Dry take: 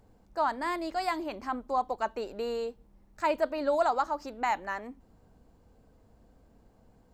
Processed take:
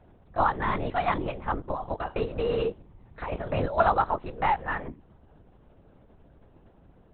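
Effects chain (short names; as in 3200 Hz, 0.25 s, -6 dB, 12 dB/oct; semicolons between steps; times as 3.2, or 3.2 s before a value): 1.64–3.78 negative-ratio compressor -33 dBFS, ratio -1; LPC vocoder at 8 kHz whisper; gain +4.5 dB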